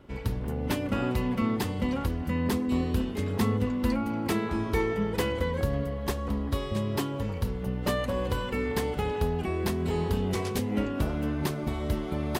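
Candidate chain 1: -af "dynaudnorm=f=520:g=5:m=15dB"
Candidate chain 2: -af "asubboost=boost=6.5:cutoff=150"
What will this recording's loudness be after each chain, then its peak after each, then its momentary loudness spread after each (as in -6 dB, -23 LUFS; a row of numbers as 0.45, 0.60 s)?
-17.5, -22.0 LUFS; -2.0, -4.0 dBFS; 9, 7 LU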